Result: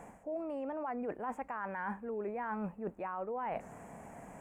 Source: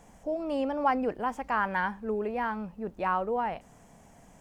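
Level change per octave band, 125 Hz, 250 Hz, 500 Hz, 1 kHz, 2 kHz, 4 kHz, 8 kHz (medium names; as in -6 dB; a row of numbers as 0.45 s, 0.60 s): -5.5 dB, -7.5 dB, -7.0 dB, -10.0 dB, -11.0 dB, under -15 dB, no reading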